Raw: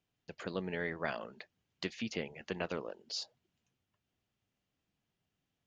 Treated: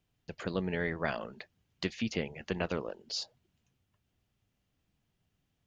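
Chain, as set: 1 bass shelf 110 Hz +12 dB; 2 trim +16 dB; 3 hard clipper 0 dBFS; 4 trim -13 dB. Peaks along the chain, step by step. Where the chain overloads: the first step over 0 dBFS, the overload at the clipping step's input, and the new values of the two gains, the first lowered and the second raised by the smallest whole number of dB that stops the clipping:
-20.0 dBFS, -4.0 dBFS, -4.0 dBFS, -17.0 dBFS; nothing clips

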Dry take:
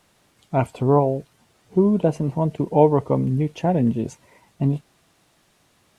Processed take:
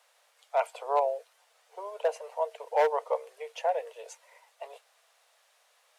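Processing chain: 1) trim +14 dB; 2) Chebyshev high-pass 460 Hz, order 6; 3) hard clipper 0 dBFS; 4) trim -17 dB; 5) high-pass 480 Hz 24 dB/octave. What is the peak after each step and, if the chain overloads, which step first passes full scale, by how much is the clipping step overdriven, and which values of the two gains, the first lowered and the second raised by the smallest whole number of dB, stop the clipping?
+11.5 dBFS, +7.5 dBFS, 0.0 dBFS, -17.0 dBFS, -14.5 dBFS; step 1, 7.5 dB; step 1 +6 dB, step 4 -9 dB

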